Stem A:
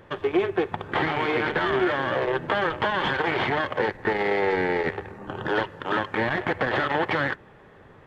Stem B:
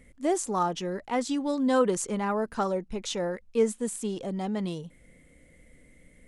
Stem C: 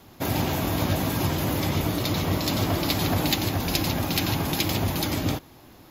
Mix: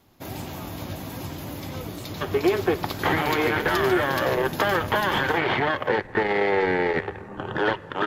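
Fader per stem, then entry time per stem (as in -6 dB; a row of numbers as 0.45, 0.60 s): +1.5, -18.5, -9.5 dB; 2.10, 0.00, 0.00 s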